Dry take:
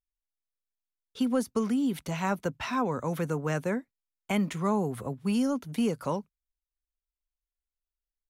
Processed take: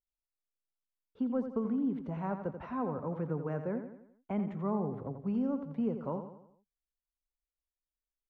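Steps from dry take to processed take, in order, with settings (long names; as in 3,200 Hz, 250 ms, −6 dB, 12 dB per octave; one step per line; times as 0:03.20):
low-pass filter 1,000 Hz 12 dB per octave
on a send: repeating echo 86 ms, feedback 47%, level −9 dB
on the sum: level −5.5 dB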